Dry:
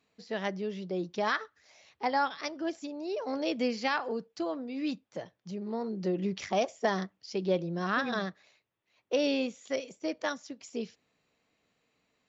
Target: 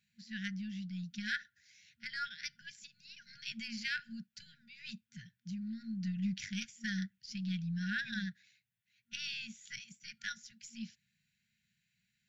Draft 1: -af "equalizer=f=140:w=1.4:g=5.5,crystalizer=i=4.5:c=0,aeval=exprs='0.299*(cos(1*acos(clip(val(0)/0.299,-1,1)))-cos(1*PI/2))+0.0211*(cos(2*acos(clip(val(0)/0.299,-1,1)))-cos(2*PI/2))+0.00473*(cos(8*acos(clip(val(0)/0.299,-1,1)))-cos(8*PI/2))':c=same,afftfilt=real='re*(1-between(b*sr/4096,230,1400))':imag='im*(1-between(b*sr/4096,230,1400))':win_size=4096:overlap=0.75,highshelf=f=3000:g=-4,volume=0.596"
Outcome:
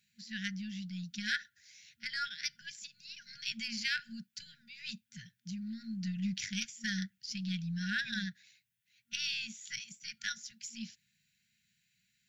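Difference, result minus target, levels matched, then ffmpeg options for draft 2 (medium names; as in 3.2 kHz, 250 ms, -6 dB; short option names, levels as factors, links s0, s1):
8 kHz band +5.0 dB
-af "equalizer=f=140:w=1.4:g=5.5,crystalizer=i=4.5:c=0,aeval=exprs='0.299*(cos(1*acos(clip(val(0)/0.299,-1,1)))-cos(1*PI/2))+0.0211*(cos(2*acos(clip(val(0)/0.299,-1,1)))-cos(2*PI/2))+0.00473*(cos(8*acos(clip(val(0)/0.299,-1,1)))-cos(8*PI/2))':c=same,afftfilt=real='re*(1-between(b*sr/4096,230,1400))':imag='im*(1-between(b*sr/4096,230,1400))':win_size=4096:overlap=0.75,highshelf=f=3000:g=-13,volume=0.596"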